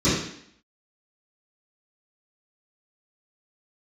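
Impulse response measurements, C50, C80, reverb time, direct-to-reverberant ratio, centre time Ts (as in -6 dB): 0.5 dB, 5.0 dB, 0.65 s, -17.0 dB, 60 ms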